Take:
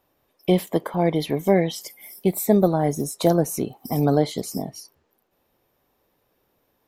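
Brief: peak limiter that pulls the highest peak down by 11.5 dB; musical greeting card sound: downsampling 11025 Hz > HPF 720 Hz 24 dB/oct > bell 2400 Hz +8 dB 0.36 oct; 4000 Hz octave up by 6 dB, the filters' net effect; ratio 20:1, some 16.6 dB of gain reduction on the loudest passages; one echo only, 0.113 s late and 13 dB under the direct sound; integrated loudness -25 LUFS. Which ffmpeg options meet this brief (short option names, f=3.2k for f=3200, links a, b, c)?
-af "equalizer=f=4k:t=o:g=6.5,acompressor=threshold=-28dB:ratio=20,alimiter=level_in=3.5dB:limit=-24dB:level=0:latency=1,volume=-3.5dB,aecho=1:1:113:0.224,aresample=11025,aresample=44100,highpass=f=720:w=0.5412,highpass=f=720:w=1.3066,equalizer=f=2.4k:t=o:w=0.36:g=8,volume=19.5dB"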